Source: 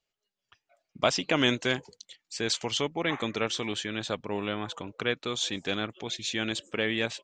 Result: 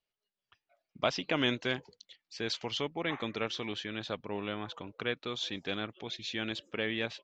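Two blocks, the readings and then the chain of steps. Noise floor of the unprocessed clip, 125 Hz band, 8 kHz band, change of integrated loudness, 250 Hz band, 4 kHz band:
under -85 dBFS, -5.0 dB, -13.5 dB, -5.5 dB, -5.0 dB, -5.5 dB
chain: low-pass 5.2 kHz 24 dB/octave; trim -5 dB

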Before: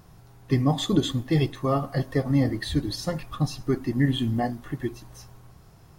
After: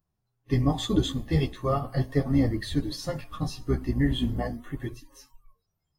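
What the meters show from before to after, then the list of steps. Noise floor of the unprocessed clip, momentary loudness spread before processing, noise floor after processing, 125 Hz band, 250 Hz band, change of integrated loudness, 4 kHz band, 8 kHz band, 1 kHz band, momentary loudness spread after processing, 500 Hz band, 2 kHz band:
-52 dBFS, 9 LU, -80 dBFS, -2.0 dB, -2.0 dB, -2.0 dB, -2.5 dB, -3.0 dB, -3.0 dB, 10 LU, -2.5 dB, -3.0 dB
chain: octave divider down 2 oct, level -3 dB; chorus voices 2, 0.39 Hz, delay 12 ms, depth 5 ms; spectral noise reduction 27 dB

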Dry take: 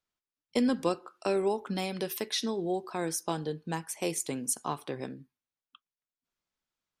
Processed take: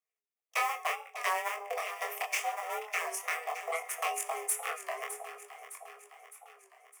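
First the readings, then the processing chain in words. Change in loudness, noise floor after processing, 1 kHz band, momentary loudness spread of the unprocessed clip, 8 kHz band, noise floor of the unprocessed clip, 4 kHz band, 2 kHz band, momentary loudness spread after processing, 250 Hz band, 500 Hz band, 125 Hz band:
-2.0 dB, under -85 dBFS, +4.0 dB, 8 LU, -1.0 dB, under -85 dBFS, -4.5 dB, +8.5 dB, 16 LU, under -30 dB, -8.0 dB, under -40 dB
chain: cycle switcher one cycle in 2, inverted; peaking EQ 1.9 kHz +5 dB 1.1 oct; in parallel at +2 dB: peak limiter -18.5 dBFS, peak gain reduction 7.5 dB; on the sum: transient shaper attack +11 dB, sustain -7 dB; LFO notch sine 6.3 Hz 410–2600 Hz; static phaser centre 740 Hz, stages 8; feedback comb 170 Hz, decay 0.5 s, harmonics all, mix 60%; saturation -19 dBFS, distortion -12 dB; frequency shift +410 Hz; chorus 0.72 Hz, delay 20 ms, depth 7.2 ms; echo whose repeats swap between lows and highs 305 ms, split 860 Hz, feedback 74%, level -9 dB; warped record 33 1/3 rpm, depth 100 cents

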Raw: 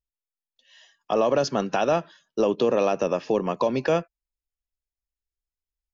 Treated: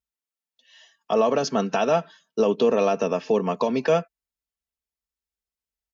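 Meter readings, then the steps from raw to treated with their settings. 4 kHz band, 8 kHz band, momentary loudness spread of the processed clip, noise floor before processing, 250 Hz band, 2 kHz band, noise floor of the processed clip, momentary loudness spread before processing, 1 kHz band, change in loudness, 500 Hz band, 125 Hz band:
+1.0 dB, no reading, 5 LU, under -85 dBFS, +1.5 dB, +0.5 dB, under -85 dBFS, 5 LU, +1.0 dB, +1.5 dB, +1.5 dB, +0.5 dB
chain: high-pass 67 Hz 12 dB/octave; comb 4.5 ms, depth 54%

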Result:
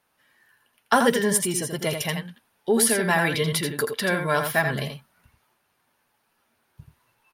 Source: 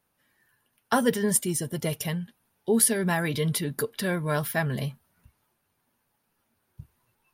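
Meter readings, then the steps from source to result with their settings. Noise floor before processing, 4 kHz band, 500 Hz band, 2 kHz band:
-75 dBFS, +6.5 dB, +4.0 dB, +7.5 dB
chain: overdrive pedal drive 9 dB, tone 4.9 kHz, clips at -5.5 dBFS; on a send: delay 83 ms -6.5 dB; on the sum: trim +2.5 dB

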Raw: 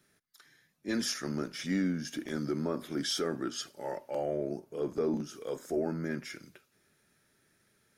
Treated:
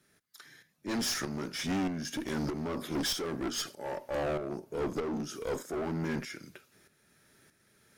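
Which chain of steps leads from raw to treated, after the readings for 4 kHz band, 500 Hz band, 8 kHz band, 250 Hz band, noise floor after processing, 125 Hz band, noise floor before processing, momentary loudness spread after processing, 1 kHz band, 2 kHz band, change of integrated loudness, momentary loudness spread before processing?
+1.5 dB, -1.0 dB, +2.5 dB, -1.0 dB, -70 dBFS, +1.0 dB, -72 dBFS, 8 LU, +3.5 dB, +2.0 dB, 0.0 dB, 8 LU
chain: in parallel at -8.5 dB: sine folder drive 9 dB, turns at -20.5 dBFS; on the sum: tremolo saw up 1.6 Hz, depth 65%; one-sided clip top -34.5 dBFS, bottom -25 dBFS

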